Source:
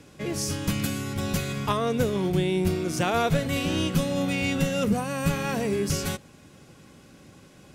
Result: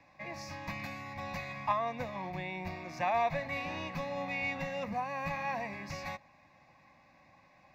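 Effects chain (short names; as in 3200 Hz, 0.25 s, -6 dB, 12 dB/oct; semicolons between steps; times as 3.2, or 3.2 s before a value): three-band isolator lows -16 dB, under 440 Hz, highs -21 dB, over 3000 Hz; fixed phaser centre 2100 Hz, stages 8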